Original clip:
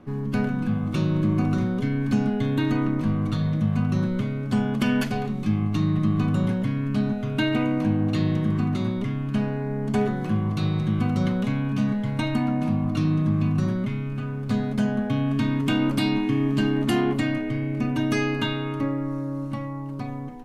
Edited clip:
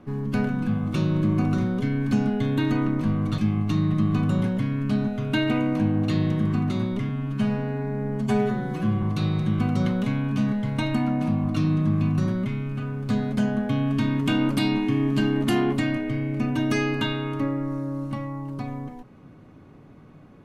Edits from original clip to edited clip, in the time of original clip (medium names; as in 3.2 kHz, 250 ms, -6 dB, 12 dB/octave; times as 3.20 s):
3.38–5.43 s: delete
9.14–10.43 s: stretch 1.5×